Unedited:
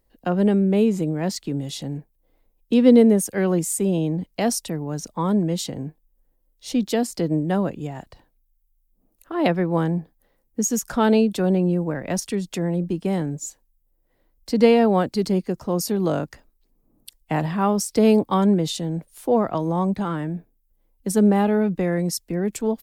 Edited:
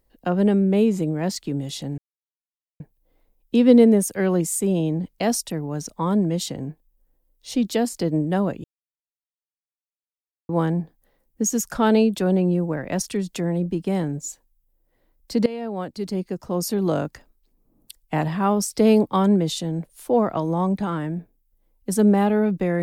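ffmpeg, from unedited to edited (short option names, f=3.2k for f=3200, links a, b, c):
-filter_complex "[0:a]asplit=5[a][b][c][d][e];[a]atrim=end=1.98,asetpts=PTS-STARTPTS,afade=t=out:st=1.976:d=0.004:c=hsin,apad=pad_dur=0.82[f];[b]atrim=start=1.98:end=7.82,asetpts=PTS-STARTPTS,afade=t=in:d=0.004:c=hsin,afade=t=out:st=5.836:d=0.004:c=hsin[g];[c]atrim=start=7.82:end=9.67,asetpts=PTS-STARTPTS,volume=0[h];[d]atrim=start=9.67:end=14.64,asetpts=PTS-STARTPTS,afade=t=in:d=0.004:c=hsin,afade=t=out:st=4.966:d=0.004:c=hsin:silence=0.1[i];[e]atrim=start=14.64,asetpts=PTS-STARTPTS,afade=t=in:d=1.34:silence=0.1[j];[f][g][h][i][j]concat=n=5:v=0:a=1"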